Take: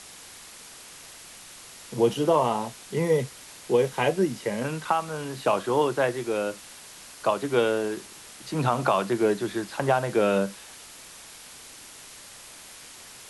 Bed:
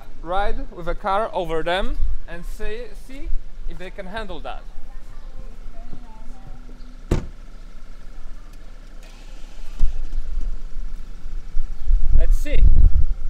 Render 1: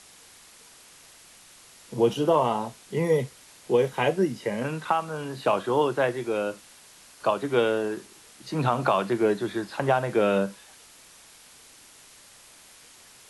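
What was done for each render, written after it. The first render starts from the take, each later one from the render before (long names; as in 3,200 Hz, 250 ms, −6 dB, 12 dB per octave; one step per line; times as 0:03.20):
noise reduction from a noise print 6 dB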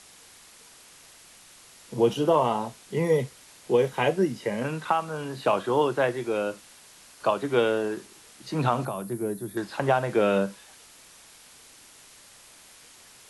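0:08.85–0:09.57: drawn EQ curve 130 Hz 0 dB, 500 Hz −9 dB, 960 Hz −12 dB, 3,000 Hz −17 dB, 7,200 Hz −5 dB, 11,000 Hz +11 dB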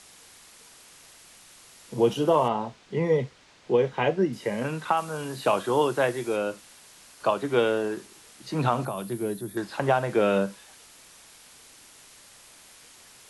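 0:02.48–0:04.33: high-frequency loss of the air 120 metres
0:04.97–0:06.36: high-shelf EQ 6,400 Hz +9 dB
0:08.97–0:09.41: parametric band 3,300 Hz +10 dB 1 octave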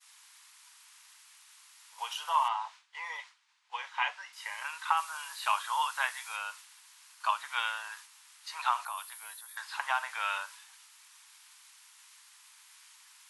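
elliptic high-pass filter 930 Hz, stop band 60 dB
downward expander −47 dBFS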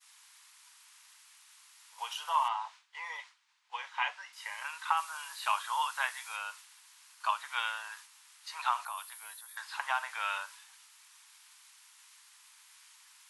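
level −1.5 dB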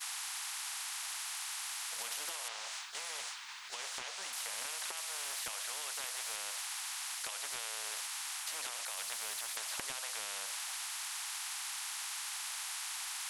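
downward compressor 3 to 1, threshold −41 dBFS, peak gain reduction 13 dB
every bin compressed towards the loudest bin 10 to 1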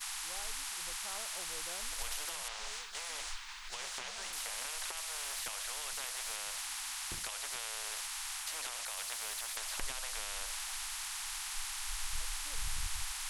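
mix in bed −29 dB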